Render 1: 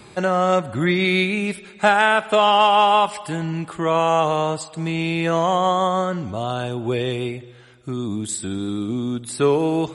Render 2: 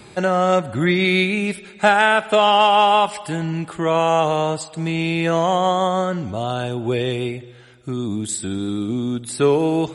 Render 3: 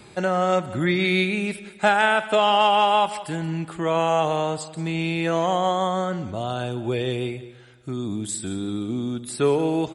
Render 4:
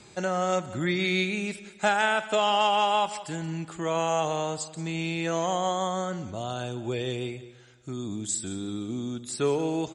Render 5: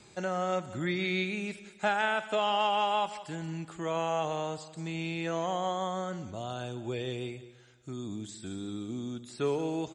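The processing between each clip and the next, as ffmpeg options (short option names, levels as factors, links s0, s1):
-af "equalizer=f=1100:w=5.7:g=-4.5,volume=1.19"
-af "aecho=1:1:178:0.15,volume=0.631"
-af "lowpass=f=6800:t=q:w=3.7,volume=0.531"
-filter_complex "[0:a]acrossover=split=4400[s0][s1];[s1]acompressor=threshold=0.00398:ratio=4:attack=1:release=60[s2];[s0][s2]amix=inputs=2:normalize=0,volume=0.596"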